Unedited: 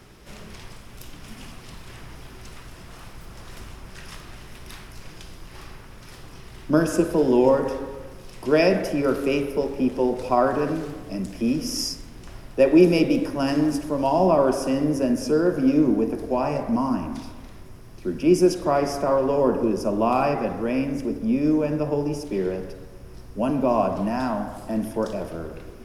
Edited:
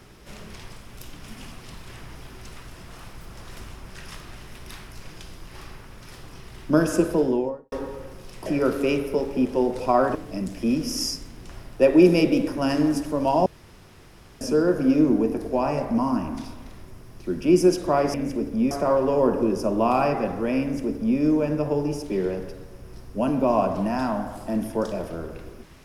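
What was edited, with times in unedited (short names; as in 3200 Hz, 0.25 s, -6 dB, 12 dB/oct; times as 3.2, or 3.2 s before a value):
7.05–7.72 studio fade out
8.46–8.89 cut
10.58–10.93 cut
14.24–15.19 room tone
20.83–21.4 copy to 18.92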